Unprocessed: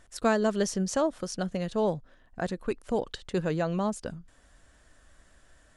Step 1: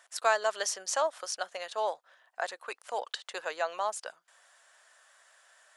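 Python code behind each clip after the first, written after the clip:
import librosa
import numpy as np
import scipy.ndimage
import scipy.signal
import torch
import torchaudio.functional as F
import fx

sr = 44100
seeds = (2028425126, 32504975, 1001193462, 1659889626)

y = scipy.signal.sosfilt(scipy.signal.butter(4, 680.0, 'highpass', fs=sr, output='sos'), x)
y = F.gain(torch.from_numpy(y), 3.0).numpy()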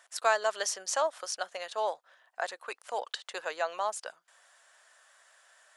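y = x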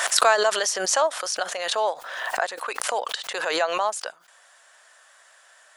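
y = fx.pre_swell(x, sr, db_per_s=39.0)
y = F.gain(torch.from_numpy(y), 7.0).numpy()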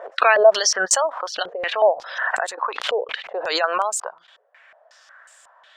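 y = fx.spec_gate(x, sr, threshold_db=-25, keep='strong')
y = np.repeat(scipy.signal.resample_poly(y, 1, 2), 2)[:len(y)]
y = fx.filter_held_lowpass(y, sr, hz=5.5, low_hz=440.0, high_hz=8000.0)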